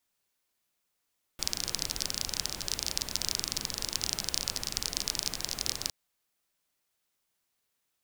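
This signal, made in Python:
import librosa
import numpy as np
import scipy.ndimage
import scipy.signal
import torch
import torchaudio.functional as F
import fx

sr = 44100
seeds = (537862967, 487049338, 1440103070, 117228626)

y = fx.rain(sr, seeds[0], length_s=4.51, drops_per_s=27.0, hz=5100.0, bed_db=-7.0)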